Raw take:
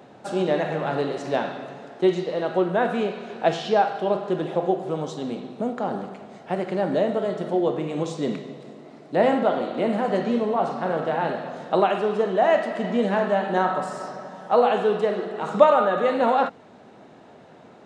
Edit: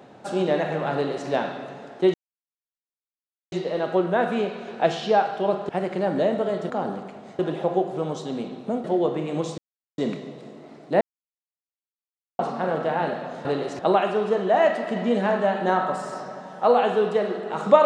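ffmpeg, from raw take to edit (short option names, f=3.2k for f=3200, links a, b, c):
-filter_complex "[0:a]asplit=11[a][b][c][d][e][f][g][h][i][j][k];[a]atrim=end=2.14,asetpts=PTS-STARTPTS,afade=t=out:st=2.136:d=0.004:c=hsin,apad=pad_dur=1.38[l];[b]atrim=start=2.14:end=4.312,asetpts=PTS-STARTPTS,afade=t=in:d=0.004:c=hsin[m];[c]atrim=start=6.448:end=7.462[n];[d]atrim=start=5.758:end=6.452[o];[e]atrim=start=4.308:end=5.762[p];[f]atrim=start=7.458:end=8.2,asetpts=PTS-STARTPTS,afade=t=out:st=0.738:d=0.004:c=hsin,apad=pad_dur=0.4[q];[g]atrim=start=8.2:end=9.23,asetpts=PTS-STARTPTS,afade=t=in:d=0.004:c=hsin,afade=t=out:st=1.026:d=0.004:c=hsin[r];[h]atrim=start=9.23:end=10.61,asetpts=PTS-STARTPTS,volume=0[s];[i]atrim=start=10.61:end=11.672,asetpts=PTS-STARTPTS,afade=t=in:d=0.004:c=hsin[t];[j]atrim=start=0.938:end=1.282[u];[k]atrim=start=11.668[v];[l][m]concat=n=2:v=0:a=1[w];[w][n]acrossfade=d=0.004:c1=hsin:c2=hsin[x];[x][o]acrossfade=d=0.004:c1=hsin:c2=hsin[y];[y][p]acrossfade=d=0.004:c1=hsin:c2=hsin[z];[q][r][s][t]concat=n=4:v=0:a=1[aa];[z][aa]acrossfade=d=0.004:c1=hsin:c2=hsin[ab];[ab][u]acrossfade=d=0.004:c1=hsin:c2=hsin[ac];[ac][v]acrossfade=d=0.004:c1=hsin:c2=hsin"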